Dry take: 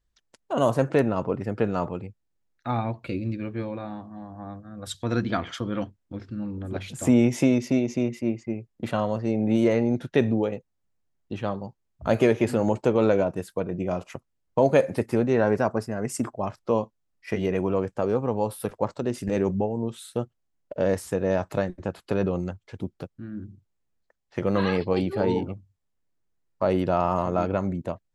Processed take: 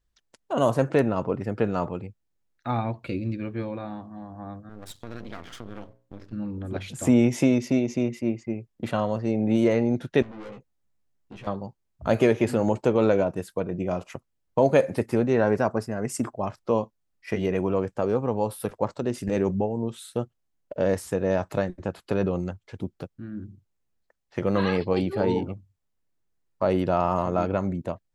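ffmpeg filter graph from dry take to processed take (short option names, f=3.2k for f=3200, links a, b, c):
-filter_complex "[0:a]asettb=1/sr,asplit=3[a][b][c];[a]atrim=end=4.694[d];[b]atrim=start=4.69:end=6.33,asetpts=PTS-STARTPTS,afade=t=in:d=0.004:c=qsin,afade=t=out:st=1.636:d=0.004:c=qsin,bandreject=f=60:t=h:w=6,bandreject=f=120:t=h:w=6,bandreject=f=180:t=h:w=6,bandreject=f=240:t=h:w=6,bandreject=f=300:t=h:w=6,bandreject=f=360:t=h:w=6,bandreject=f=420:t=h:w=6,bandreject=f=480:t=h:w=6,bandreject=f=540:t=h:w=6,acompressor=threshold=-34dB:ratio=3:attack=3.2:release=140:knee=1:detection=peak,aeval=exprs='max(val(0),0)':c=same[e];[c]atrim=start=6.326[f];[d][e]acrossfade=d=0.004:c1=hsin:c2=qsin[g];[g][f]acrossfade=d=0.004:c1=qsin:c2=hsin,asettb=1/sr,asplit=3[h][i][j];[h]atrim=end=10.224[k];[i]atrim=start=10.22:end=11.47,asetpts=PTS-STARTPTS,afade=t=in:d=0.004:c=qsin,afade=t=out:st=1.246:d=0.004:c=qsin,aeval=exprs='(tanh(56.2*val(0)+0.35)-tanh(0.35))/56.2':c=same,acompressor=threshold=-46dB:ratio=1.5:attack=3.2:release=140:knee=1:detection=peak,asplit=2[l][m];[m]adelay=15,volume=-4.5dB[n];[l][n]amix=inputs=2:normalize=0,atrim=end_sample=55125[o];[j]atrim=start=11.466[p];[k][o]acrossfade=d=0.004:c1=hsin:c2=qsin[q];[q][p]acrossfade=d=0.004:c1=qsin:c2=hsin"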